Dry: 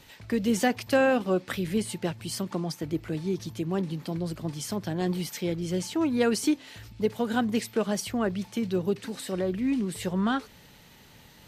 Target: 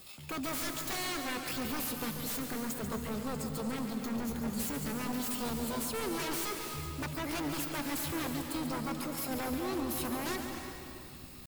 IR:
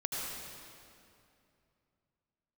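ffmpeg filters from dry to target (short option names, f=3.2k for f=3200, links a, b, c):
-filter_complex "[0:a]aemphasis=mode=production:type=50fm,bandreject=f=4.3k:w=5.2,asubboost=boost=4.5:cutoff=110,aeval=exprs='0.282*(cos(1*acos(clip(val(0)/0.282,-1,1)))-cos(1*PI/2))+0.00355*(cos(2*acos(clip(val(0)/0.282,-1,1)))-cos(2*PI/2))+0.0355*(cos(4*acos(clip(val(0)/0.282,-1,1)))-cos(4*PI/2))+0.00891*(cos(6*acos(clip(val(0)/0.282,-1,1)))-cos(6*PI/2))':c=same,acrusher=bits=6:mode=log:mix=0:aa=0.000001,asetrate=60591,aresample=44100,atempo=0.727827,aeval=exprs='0.0376*(abs(mod(val(0)/0.0376+3,4)-2)-1)':c=same,asplit=2[a][b];[1:a]atrim=start_sample=2205,adelay=141[c];[b][c]afir=irnorm=-1:irlink=0,volume=-7.5dB[d];[a][d]amix=inputs=2:normalize=0,volume=-3.5dB"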